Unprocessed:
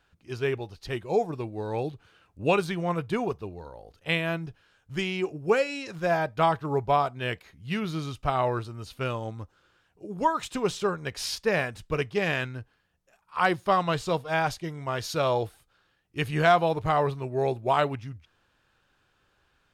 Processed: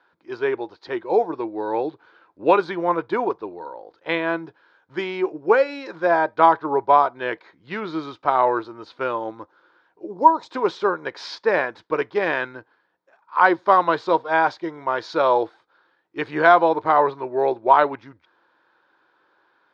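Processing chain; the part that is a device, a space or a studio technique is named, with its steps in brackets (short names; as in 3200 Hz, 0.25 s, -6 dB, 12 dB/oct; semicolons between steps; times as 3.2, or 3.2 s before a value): phone earpiece (speaker cabinet 330–4300 Hz, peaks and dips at 330 Hz +9 dB, 520 Hz +4 dB, 950 Hz +10 dB, 1500 Hz +5 dB, 2800 Hz -10 dB); 10.11–10.51 band shelf 2000 Hz -13.5 dB; gain +3.5 dB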